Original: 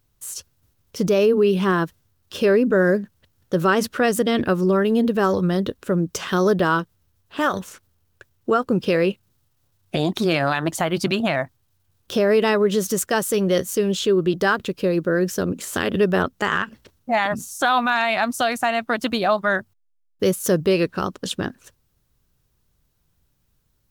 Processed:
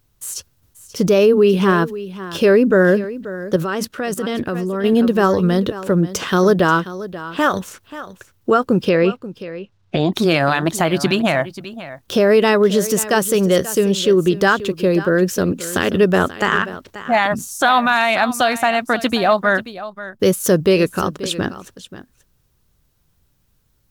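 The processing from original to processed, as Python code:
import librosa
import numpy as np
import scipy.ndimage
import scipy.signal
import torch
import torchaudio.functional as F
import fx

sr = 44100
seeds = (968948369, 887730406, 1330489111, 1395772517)

y = fx.air_absorb(x, sr, metres=140.0, at=(8.89, 10.13))
y = y + 10.0 ** (-15.0 / 20.0) * np.pad(y, (int(534 * sr / 1000.0), 0))[:len(y)]
y = fx.level_steps(y, sr, step_db=13, at=(3.56, 4.84))
y = y * librosa.db_to_amplitude(4.5)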